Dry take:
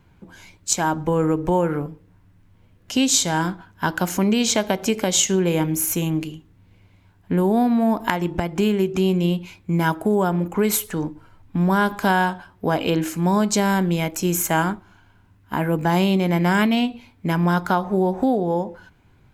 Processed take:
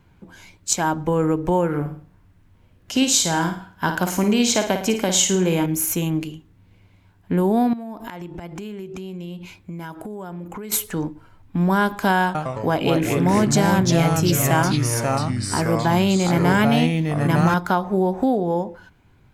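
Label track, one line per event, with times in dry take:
1.680000	5.660000	flutter echo walls apart 9.3 m, dies away in 0.44 s
7.730000	10.720000	compressor 8:1, threshold -30 dBFS
12.240000	17.540000	echoes that change speed 0.107 s, each echo -3 st, echoes 3

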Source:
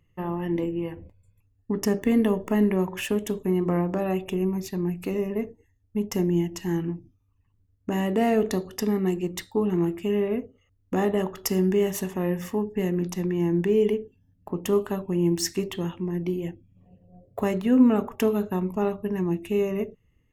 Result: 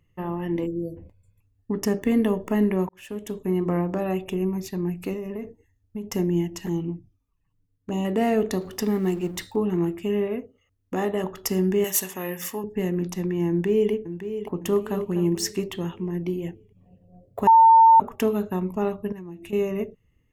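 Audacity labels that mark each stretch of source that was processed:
0.670000	0.970000	spectral delete 680–4000 Hz
2.890000	3.540000	fade in
5.130000	6.080000	compressor, threshold -28 dBFS
6.660000	8.050000	envelope flanger delay at rest 7 ms, full sweep at -24.5 dBFS
8.610000	9.560000	G.711 law mismatch coded by mu
10.270000	11.240000	low shelf 220 Hz -6.5 dB
11.840000	12.640000	tilt +3.5 dB/oct
13.490000	13.920000	echo throw 0.56 s, feedback 45%, level -10 dB
14.690000	15.120000	echo throw 0.25 s, feedback 15%, level -10 dB
17.470000	18.000000	bleep 903 Hz -9.5 dBFS
19.120000	19.530000	compressor, threshold -36 dBFS

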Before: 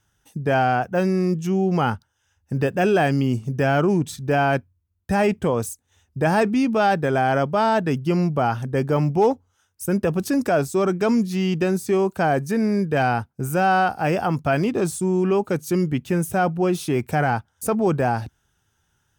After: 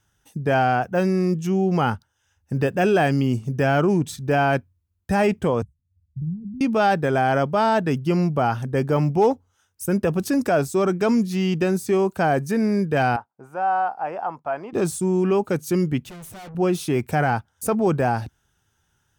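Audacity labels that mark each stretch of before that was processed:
5.620000	6.610000	inverse Chebyshev low-pass stop band from 570 Hz, stop band 60 dB
13.160000	14.730000	band-pass 890 Hz, Q 2.2
16.090000	16.550000	tube stage drive 38 dB, bias 0.6

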